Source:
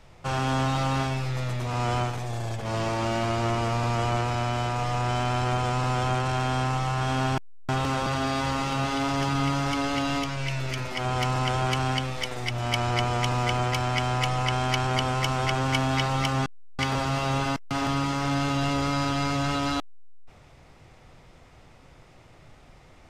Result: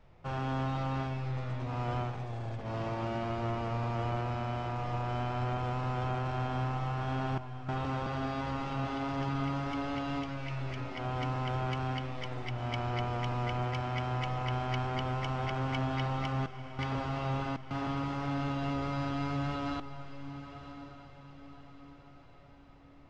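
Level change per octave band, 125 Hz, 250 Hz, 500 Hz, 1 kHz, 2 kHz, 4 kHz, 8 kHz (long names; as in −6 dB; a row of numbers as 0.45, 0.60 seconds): −6.5 dB, −7.0 dB, −7.5 dB, −8.5 dB, −10.5 dB, −13.5 dB, below −20 dB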